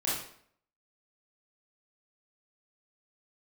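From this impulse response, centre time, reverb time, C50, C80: 57 ms, 0.60 s, 0.5 dB, 6.0 dB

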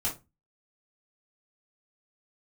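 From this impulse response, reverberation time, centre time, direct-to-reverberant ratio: 0.25 s, 20 ms, −6.0 dB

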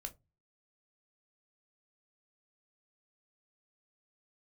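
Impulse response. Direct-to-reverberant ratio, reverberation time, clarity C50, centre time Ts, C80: 6.0 dB, non-exponential decay, 20.5 dB, 6 ms, 28.0 dB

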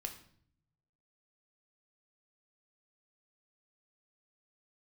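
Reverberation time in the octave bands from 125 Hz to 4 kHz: 1.4, 0.95, 0.65, 0.55, 0.50, 0.50 seconds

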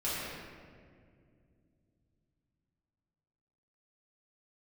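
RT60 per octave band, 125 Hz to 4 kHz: 4.4, 3.8, 2.6, 1.7, 1.7, 1.2 seconds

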